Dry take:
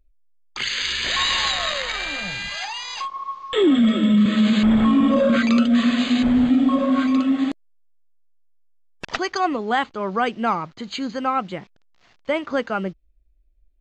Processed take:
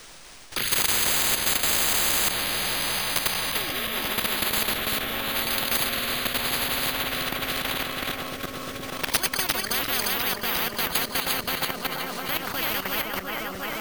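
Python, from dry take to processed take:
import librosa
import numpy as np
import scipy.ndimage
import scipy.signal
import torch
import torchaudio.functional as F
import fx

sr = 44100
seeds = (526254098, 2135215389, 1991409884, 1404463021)

y = fx.reverse_delay_fb(x, sr, ms=176, feedback_pct=81, wet_db=-1.5)
y = fx.rotary_switch(y, sr, hz=0.85, then_hz=6.0, switch_at_s=10.03)
y = fx.quant_dither(y, sr, seeds[0], bits=8, dither='triangular')
y = np.repeat(scipy.signal.resample_poly(y, 1, 3), 3)[:len(y)]
y = fx.level_steps(y, sr, step_db=12)
y = fx.spectral_comp(y, sr, ratio=10.0)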